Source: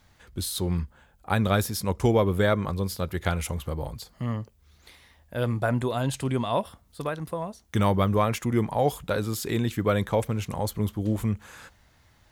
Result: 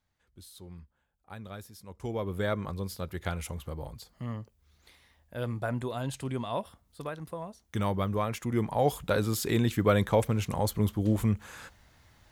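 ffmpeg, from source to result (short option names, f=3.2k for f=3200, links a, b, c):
-af "afade=t=in:st=1.9:d=0.63:silence=0.223872,afade=t=in:st=8.34:d=0.83:silence=0.446684"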